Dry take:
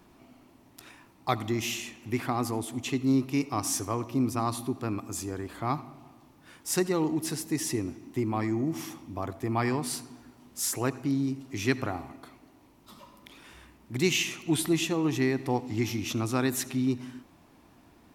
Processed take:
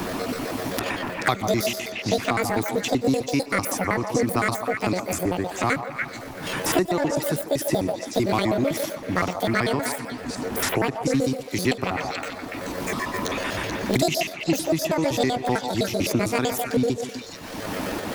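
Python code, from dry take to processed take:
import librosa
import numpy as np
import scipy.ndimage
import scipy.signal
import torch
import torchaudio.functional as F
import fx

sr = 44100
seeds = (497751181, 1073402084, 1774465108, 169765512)

p1 = fx.pitch_trill(x, sr, semitones=10.5, every_ms=64)
p2 = np.sign(p1) * np.maximum(np.abs(p1) - 10.0 ** (-39.0 / 20.0), 0.0)
p3 = p1 + (p2 * 10.0 ** (-4.0 / 20.0))
p4 = fx.tremolo_random(p3, sr, seeds[0], hz=3.5, depth_pct=55)
p5 = fx.echo_stepped(p4, sr, ms=144, hz=730.0, octaves=1.4, feedback_pct=70, wet_db=-5.0)
p6 = fx.band_squash(p5, sr, depth_pct=100)
y = p6 * 10.0 ** (5.5 / 20.0)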